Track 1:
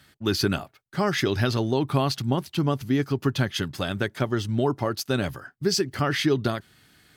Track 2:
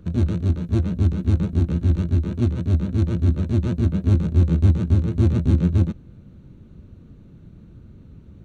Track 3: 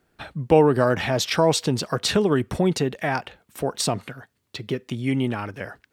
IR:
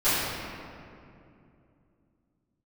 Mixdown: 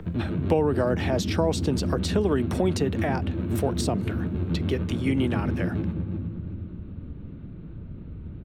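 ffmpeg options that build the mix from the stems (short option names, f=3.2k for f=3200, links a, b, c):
-filter_complex "[1:a]alimiter=limit=-14.5dB:level=0:latency=1:release=233,lowpass=f=3.4k:w=0.5412,lowpass=f=3.4k:w=1.3066,acompressor=mode=upward:threshold=-33dB:ratio=2.5,volume=-2.5dB,asplit=3[a][b][c];[b]volume=-19dB[d];[c]volume=-9dB[e];[2:a]volume=1dB[f];[3:a]atrim=start_sample=2205[g];[d][g]afir=irnorm=-1:irlink=0[h];[e]aecho=0:1:361|722|1083|1444|1805|2166:1|0.45|0.202|0.0911|0.041|0.0185[i];[a][f][h][i]amix=inputs=4:normalize=0,acrossover=split=160|640[j][k][l];[j]acompressor=threshold=-31dB:ratio=4[m];[k]acompressor=threshold=-21dB:ratio=4[n];[l]acompressor=threshold=-33dB:ratio=4[o];[m][n][o]amix=inputs=3:normalize=0"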